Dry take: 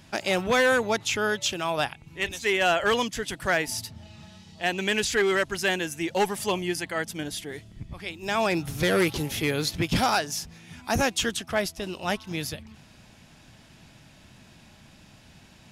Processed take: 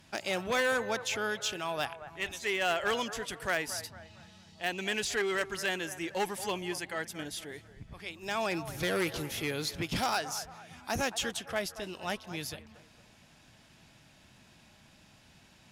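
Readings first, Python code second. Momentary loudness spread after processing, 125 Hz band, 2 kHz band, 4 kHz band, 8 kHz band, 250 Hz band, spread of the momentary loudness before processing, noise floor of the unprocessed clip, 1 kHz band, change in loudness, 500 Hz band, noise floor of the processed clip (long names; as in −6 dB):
12 LU, −9.5 dB, −6.5 dB, −6.5 dB, −6.0 dB, −9.0 dB, 12 LU, −53 dBFS, −7.0 dB, −7.0 dB, −8.0 dB, −60 dBFS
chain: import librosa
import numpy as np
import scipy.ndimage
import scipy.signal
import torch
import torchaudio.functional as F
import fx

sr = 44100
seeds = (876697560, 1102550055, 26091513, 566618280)

y = fx.low_shelf(x, sr, hz=380.0, db=-4.0)
y = fx.echo_wet_bandpass(y, sr, ms=227, feedback_pct=39, hz=870.0, wet_db=-12.5)
y = fx.cheby_harmonics(y, sr, harmonics=(3, 5), levels_db=(-13, -20), full_scale_db=-13.5)
y = F.gain(torch.from_numpy(y), -3.5).numpy()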